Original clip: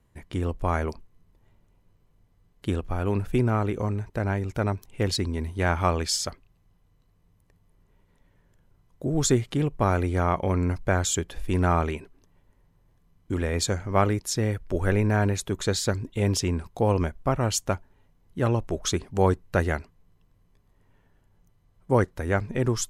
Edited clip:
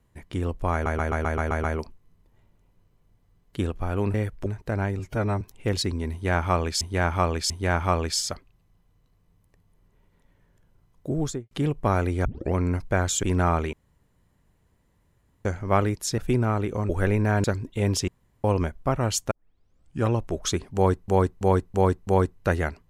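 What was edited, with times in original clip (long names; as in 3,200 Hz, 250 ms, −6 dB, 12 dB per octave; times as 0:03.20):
0:00.73: stutter 0.13 s, 8 plays
0:03.23–0:03.94: swap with 0:14.42–0:14.74
0:04.47–0:04.75: time-stretch 1.5×
0:05.46–0:06.15: repeat, 3 plays
0:09.07–0:09.47: fade out and dull
0:10.21: tape start 0.29 s
0:11.19–0:11.47: remove
0:11.97–0:13.69: fill with room tone
0:15.29–0:15.84: remove
0:16.48–0:16.84: fill with room tone
0:17.71: tape start 0.79 s
0:19.15–0:19.48: repeat, 5 plays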